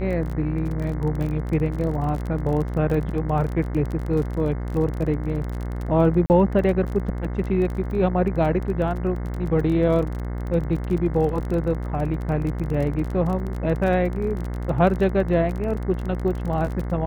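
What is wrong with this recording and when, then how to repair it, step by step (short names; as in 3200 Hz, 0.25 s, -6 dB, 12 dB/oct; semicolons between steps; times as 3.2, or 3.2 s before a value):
buzz 60 Hz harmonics 36 -28 dBFS
crackle 26/s -28 dBFS
6.26–6.3 gap 39 ms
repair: de-click; de-hum 60 Hz, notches 36; interpolate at 6.26, 39 ms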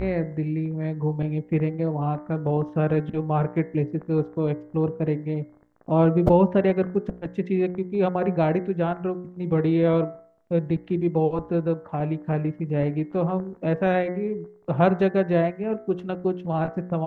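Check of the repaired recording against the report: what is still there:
none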